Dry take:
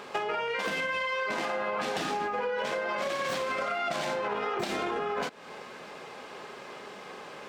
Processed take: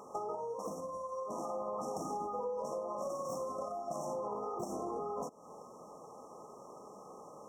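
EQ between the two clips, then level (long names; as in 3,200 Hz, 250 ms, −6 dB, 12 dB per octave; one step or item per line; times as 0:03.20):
linear-phase brick-wall band-stop 1,300–5,400 Hz
notch filter 390 Hz, Q 13
dynamic equaliser 1,100 Hz, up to −3 dB, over −49 dBFS, Q 2.5
−5.5 dB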